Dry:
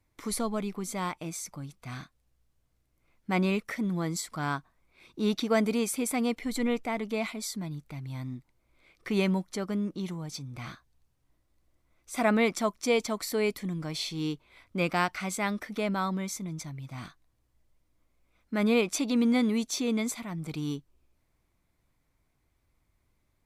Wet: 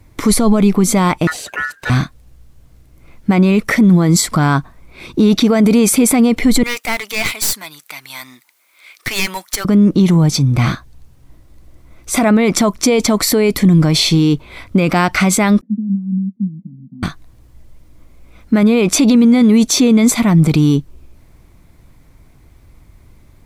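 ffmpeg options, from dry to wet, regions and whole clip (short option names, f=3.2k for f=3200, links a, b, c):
-filter_complex "[0:a]asettb=1/sr,asplit=3[a][b][c];[a]atrim=end=1.274[d];[b]atrim=start=1.27:end=1.9,asetpts=PTS-STARTPTS,afade=t=in:d=0.004:c=qsin,afade=t=out:st=0.626:d=0.004:c=qsin,acrossover=split=4400[e][f];[f]acompressor=threshold=-49dB:ratio=4:attack=1:release=60[g];[e][g]amix=inputs=2:normalize=0,aeval=exprs='val(0)*sin(2*PI*1600*n/s)':c=same[h];[c]atrim=start=1.896[i];[d][h]acrossfade=d=0.004:c1=hsin:c2=qsin[j];[j][i]acrossfade=d=0.004:c1=qsin:c2=hsin,asettb=1/sr,asplit=3[k][l][m];[k]atrim=end=6.634[n];[l]atrim=start=6.63:end=9.65,asetpts=PTS-STARTPTS,afade=t=in:d=0.004:c=qsin,afade=t=out:st=3.016:d=0.004:c=qsin,highpass=1.4k,aeval=exprs='clip(val(0),-1,0.0075)':c=same,highshelf=f=9.8k:g=11.5[o];[m]atrim=start=9.646[p];[n][o]acrossfade=d=0.004:c1=hsin:c2=qsin[q];[q][p]acrossfade=d=0.004:c1=qsin:c2=hsin,asettb=1/sr,asplit=3[r][s][t];[r]atrim=end=15.614[u];[s]atrim=start=15.61:end=17.03,asetpts=PTS-STARTPTS,afade=t=in:d=0.004:c=qsin,afade=t=out:st=1.416:d=0.004:c=qsin,acompressor=threshold=-37dB:ratio=16:attack=3.2:release=140:knee=1:detection=peak,agate=range=-33dB:threshold=-41dB:ratio=3:release=100:detection=peak,asuperpass=centerf=210:order=4:qfactor=4.5[v];[t]atrim=start=17.026[w];[u][v]acrossfade=d=0.004:c1=hsin:c2=qsin[x];[x][w]acrossfade=d=0.004:c1=qsin:c2=hsin,lowshelf=f=400:g=8,alimiter=level_in=23.5dB:limit=-1dB:release=50:level=0:latency=1,volume=-2.5dB"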